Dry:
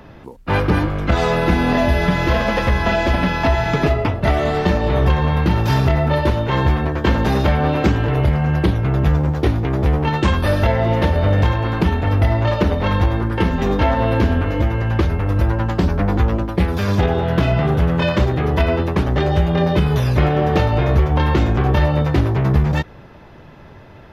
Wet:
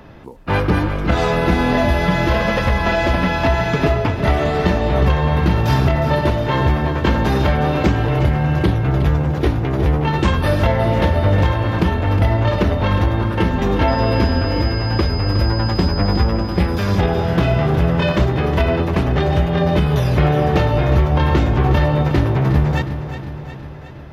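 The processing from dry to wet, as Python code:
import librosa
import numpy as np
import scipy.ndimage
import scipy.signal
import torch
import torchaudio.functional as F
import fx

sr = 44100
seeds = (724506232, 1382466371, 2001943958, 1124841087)

y = fx.dmg_tone(x, sr, hz=5000.0, level_db=-33.0, at=(13.87, 16.23), fade=0.02)
y = fx.echo_feedback(y, sr, ms=362, feedback_pct=59, wet_db=-10.5)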